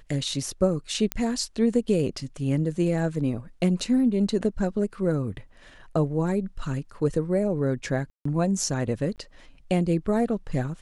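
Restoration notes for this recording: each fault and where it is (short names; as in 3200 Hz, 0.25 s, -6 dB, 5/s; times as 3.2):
1.12 pop -9 dBFS
8.1–8.25 gap 0.154 s
9.16–9.18 gap 18 ms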